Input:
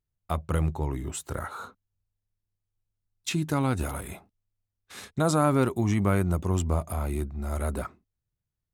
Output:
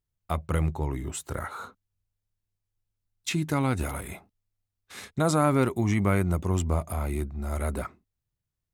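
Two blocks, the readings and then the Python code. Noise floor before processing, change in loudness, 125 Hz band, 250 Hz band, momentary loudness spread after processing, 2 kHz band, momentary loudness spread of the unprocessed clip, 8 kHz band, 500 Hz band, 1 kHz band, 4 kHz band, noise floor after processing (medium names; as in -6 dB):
under -85 dBFS, 0.0 dB, 0.0 dB, 0.0 dB, 16 LU, +2.0 dB, 17 LU, 0.0 dB, 0.0 dB, 0.0 dB, 0.0 dB, -85 dBFS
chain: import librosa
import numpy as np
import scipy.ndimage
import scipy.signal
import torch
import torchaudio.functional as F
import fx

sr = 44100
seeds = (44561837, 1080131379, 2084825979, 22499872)

y = fx.dynamic_eq(x, sr, hz=2100.0, q=4.8, threshold_db=-55.0, ratio=4.0, max_db=6)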